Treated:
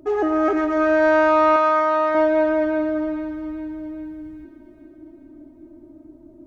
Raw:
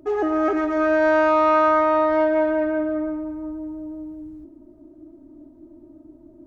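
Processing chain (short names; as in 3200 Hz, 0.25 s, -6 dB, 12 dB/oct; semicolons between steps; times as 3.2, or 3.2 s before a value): 1.56–2.15 low shelf 360 Hz -11.5 dB; thin delay 0.407 s, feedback 55%, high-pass 2100 Hz, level -8 dB; gain +1.5 dB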